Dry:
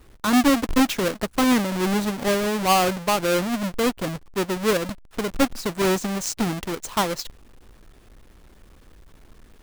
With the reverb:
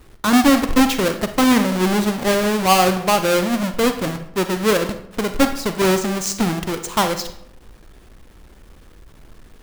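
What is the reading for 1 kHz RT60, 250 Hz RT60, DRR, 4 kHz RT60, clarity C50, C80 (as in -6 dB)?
0.70 s, 0.85 s, 8.5 dB, 0.45 s, 10.0 dB, 13.0 dB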